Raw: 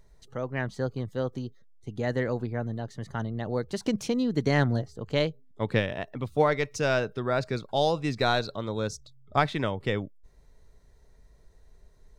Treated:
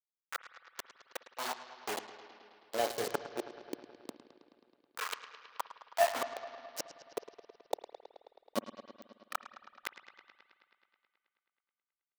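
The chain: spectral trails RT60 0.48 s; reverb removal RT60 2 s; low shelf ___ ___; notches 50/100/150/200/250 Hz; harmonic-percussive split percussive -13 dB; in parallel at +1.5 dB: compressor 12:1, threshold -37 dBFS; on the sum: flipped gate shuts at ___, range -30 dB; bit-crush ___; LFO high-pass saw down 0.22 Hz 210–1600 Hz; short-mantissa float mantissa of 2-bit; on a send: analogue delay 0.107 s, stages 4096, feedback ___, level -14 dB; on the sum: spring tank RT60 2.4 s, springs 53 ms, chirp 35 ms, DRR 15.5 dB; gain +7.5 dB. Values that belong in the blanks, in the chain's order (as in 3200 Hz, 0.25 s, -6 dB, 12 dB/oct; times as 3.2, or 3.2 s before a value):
120 Hz, -10 dB, -26 dBFS, 7-bit, 76%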